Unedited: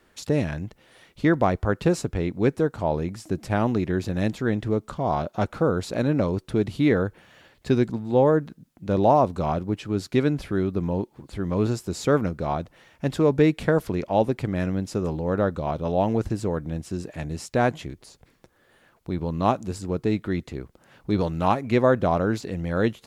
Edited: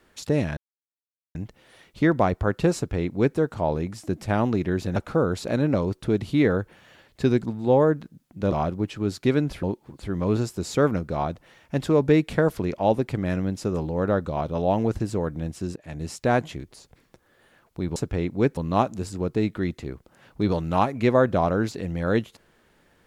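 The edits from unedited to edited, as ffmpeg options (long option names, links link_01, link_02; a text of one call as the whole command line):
ffmpeg -i in.wav -filter_complex "[0:a]asplit=8[link_01][link_02][link_03][link_04][link_05][link_06][link_07][link_08];[link_01]atrim=end=0.57,asetpts=PTS-STARTPTS,afade=type=out:start_time=0.566:duration=0.004:curve=hsin,apad=pad_dur=0.78[link_09];[link_02]atrim=start=0.57:end=4.182,asetpts=PTS-STARTPTS,afade=type=in:duration=0.004:curve=hsin[link_10];[link_03]atrim=start=5.418:end=8.982[link_11];[link_04]atrim=start=9.408:end=10.522[link_12];[link_05]atrim=start=10.928:end=17.06,asetpts=PTS-STARTPTS,afade=type=out:start_time=6.128:duration=0.004:curve=hsin:silence=0.125893[link_13];[link_06]atrim=start=17.06:end=19.262,asetpts=PTS-STARTPTS,afade=type=in:duration=0.29:silence=0.125893[link_14];[link_07]atrim=start=1.978:end=2.592[link_15];[link_08]atrim=start=19.258[link_16];[link_09][link_10]concat=n=2:v=0:a=1[link_17];[link_17][link_11]acrossfade=duration=0.004:curve1=hsin:curve2=hsin[link_18];[link_18][link_12]acrossfade=duration=0.004:curve1=hsin:curve2=hsin[link_19];[link_13][link_14]concat=n=2:v=0:a=1[link_20];[link_19][link_20]acrossfade=duration=0.004:curve1=hsin:curve2=hsin[link_21];[link_21][link_15]acrossfade=duration=0.004:curve1=hsin:curve2=hsin[link_22];[link_22][link_16]acrossfade=duration=0.004:curve1=hsin:curve2=hsin" out.wav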